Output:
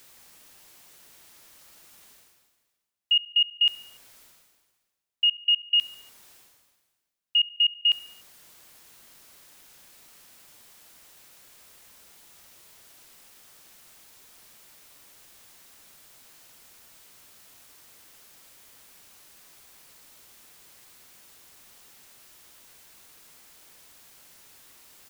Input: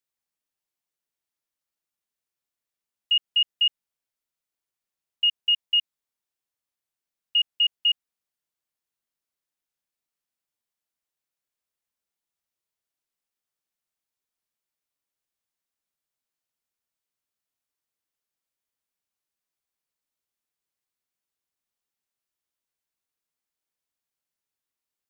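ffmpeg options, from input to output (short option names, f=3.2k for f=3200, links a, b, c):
-af "areverse,acompressor=mode=upward:threshold=-26dB:ratio=2.5,areverse,aecho=1:1:73|146|219|292:0.0891|0.0508|0.029|0.0165"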